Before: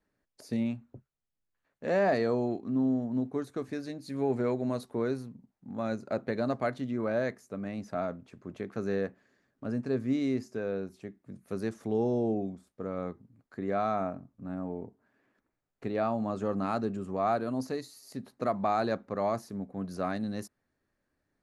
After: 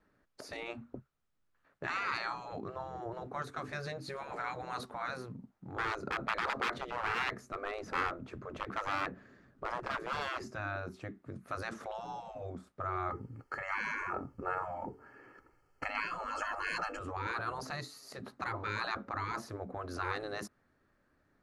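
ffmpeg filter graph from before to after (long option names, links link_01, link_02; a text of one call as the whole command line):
ffmpeg -i in.wav -filter_complex "[0:a]asettb=1/sr,asplit=3[link_01][link_02][link_03];[link_01]atrim=end=5.774[link_04];[link_02]atrim=start=5.77:end=10.51,asetpts=PTS-STARTPTS,afade=type=in:duration=0.004:curve=qsin,afade=type=out:start_time=4.736:duration=0.004:curve=qsin,aeval=exprs='0.0398*(abs(mod(val(0)/0.0398+3,4)-2)-1)':channel_layout=same,lowshelf=frequency=250:gain=11[link_05];[link_03]atrim=start=10.506[link_06];[link_04][link_05]acrossfade=duration=0.004:curve1=hsin:curve2=qsin[link_07];[link_07][link_06]acrossfade=duration=0.004:curve1=qsin:curve2=hsin,asettb=1/sr,asplit=3[link_08][link_09][link_10];[link_08]atrim=end=13.104[link_11];[link_09]atrim=start=13.1:end=16.99,asetpts=PTS-STARTPTS,afade=type=in:duration=0.004:curve=qsin,afade=type=out:start_time=3.886:duration=0.004:curve=qsin,aecho=1:1:2.3:0.57,atrim=end_sample=171549,acontrast=68,asuperstop=centerf=3700:order=12:qfactor=4.7[link_12];[link_10]atrim=start=16.986[link_13];[link_11][link_12]acrossfade=duration=0.004:curve1=hsin:curve2=qsin[link_14];[link_14][link_13]acrossfade=duration=0.004:curve1=qsin:curve2=hsin,afftfilt=real='re*lt(hypot(re,im),0.0447)':imag='im*lt(hypot(re,im),0.0447)':win_size=1024:overlap=0.75,lowpass=frequency=3100:poles=1,equalizer=frequency=1300:width=3.1:gain=6.5,volume=7dB" out.wav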